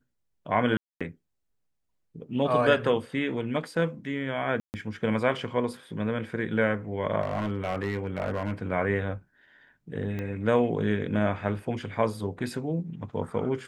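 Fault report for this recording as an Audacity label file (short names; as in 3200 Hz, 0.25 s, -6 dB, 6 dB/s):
0.770000	1.010000	gap 0.236 s
4.600000	4.740000	gap 0.139 s
7.210000	8.520000	clipped -23 dBFS
10.190000	10.190000	pop -22 dBFS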